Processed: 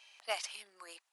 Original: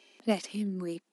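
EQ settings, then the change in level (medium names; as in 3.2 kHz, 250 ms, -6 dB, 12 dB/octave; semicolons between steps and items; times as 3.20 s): high-pass 800 Hz 24 dB/octave; +1.0 dB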